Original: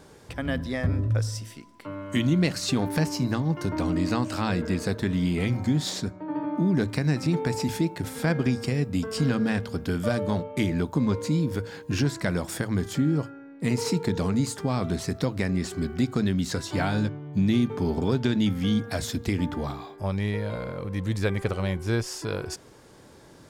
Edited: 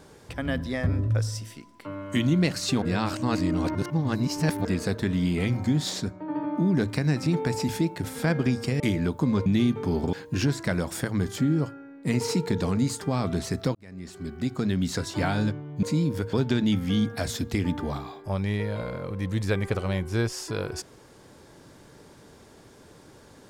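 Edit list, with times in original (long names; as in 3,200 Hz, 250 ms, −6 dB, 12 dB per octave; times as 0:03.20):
0:02.82–0:04.65: reverse
0:08.80–0:10.54: remove
0:11.20–0:11.70: swap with 0:17.40–0:18.07
0:15.32–0:16.41: fade in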